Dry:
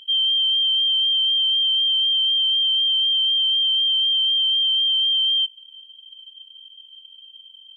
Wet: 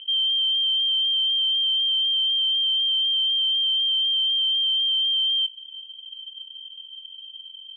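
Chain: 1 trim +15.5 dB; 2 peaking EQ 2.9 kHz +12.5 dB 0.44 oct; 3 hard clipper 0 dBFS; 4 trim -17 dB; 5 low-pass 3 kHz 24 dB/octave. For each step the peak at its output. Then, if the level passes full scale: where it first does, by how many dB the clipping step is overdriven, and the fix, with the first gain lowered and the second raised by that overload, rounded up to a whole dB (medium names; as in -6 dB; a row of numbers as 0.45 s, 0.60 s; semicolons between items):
-1.0 dBFS, +9.0 dBFS, 0.0 dBFS, -17.0 dBFS, -19.0 dBFS; step 2, 9.0 dB; step 1 +6.5 dB, step 4 -8 dB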